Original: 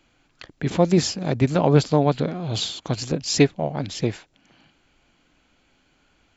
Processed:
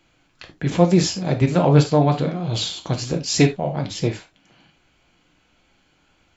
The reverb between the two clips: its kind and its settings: gated-style reverb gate 110 ms falling, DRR 3 dB

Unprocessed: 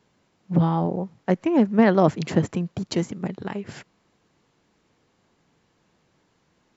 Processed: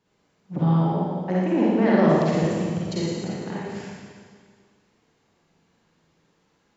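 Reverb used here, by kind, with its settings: Schroeder reverb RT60 1.9 s, DRR -7.5 dB; trim -8 dB

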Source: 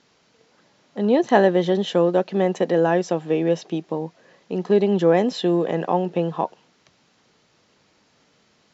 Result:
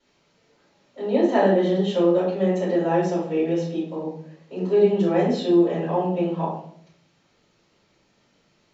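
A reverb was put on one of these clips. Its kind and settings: simulated room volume 100 m³, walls mixed, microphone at 4.7 m; trim -18.5 dB

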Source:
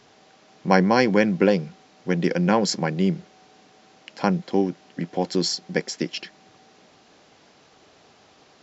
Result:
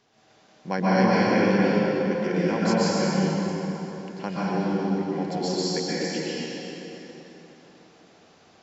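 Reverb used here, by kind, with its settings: plate-style reverb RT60 3.8 s, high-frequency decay 0.7×, pre-delay 110 ms, DRR -9.5 dB; trim -11 dB

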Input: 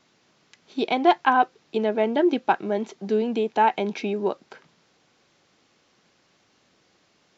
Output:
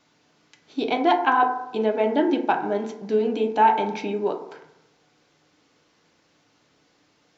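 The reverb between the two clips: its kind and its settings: FDN reverb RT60 0.82 s, low-frequency decay 0.95×, high-frequency decay 0.35×, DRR 3 dB; trim -1.5 dB

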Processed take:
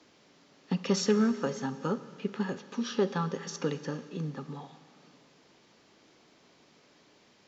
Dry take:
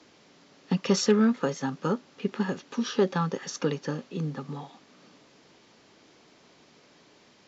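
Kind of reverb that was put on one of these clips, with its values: Schroeder reverb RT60 2.2 s, combs from 30 ms, DRR 13 dB; trim -4 dB

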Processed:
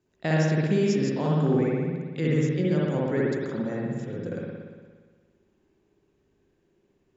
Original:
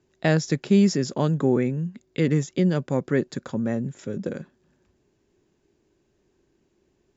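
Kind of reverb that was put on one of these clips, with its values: spring tank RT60 1.5 s, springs 58 ms, chirp 60 ms, DRR -5 dB; trim -7 dB

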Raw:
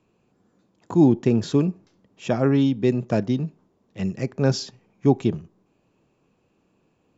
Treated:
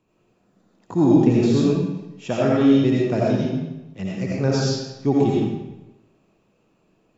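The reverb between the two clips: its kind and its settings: algorithmic reverb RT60 0.97 s, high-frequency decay 0.9×, pre-delay 45 ms, DRR -5.5 dB; trim -3 dB

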